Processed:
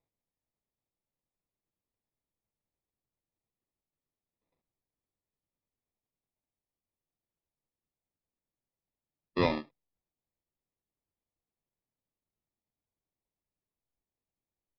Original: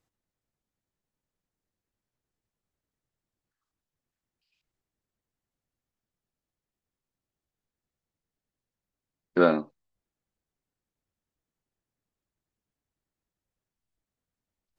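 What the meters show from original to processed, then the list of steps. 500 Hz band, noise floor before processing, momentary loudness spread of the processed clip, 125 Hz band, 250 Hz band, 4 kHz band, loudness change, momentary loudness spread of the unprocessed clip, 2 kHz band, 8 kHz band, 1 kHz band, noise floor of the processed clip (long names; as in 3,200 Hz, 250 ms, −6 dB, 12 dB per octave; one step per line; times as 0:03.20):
−8.5 dB, below −85 dBFS, 9 LU, +0.5 dB, −7.0 dB, +3.0 dB, −7.0 dB, 9 LU, −4.5 dB, can't be measured, −5.5 dB, below −85 dBFS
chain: sample-rate reduction 1,500 Hz, jitter 0%
downsampling to 11,025 Hz
level −7 dB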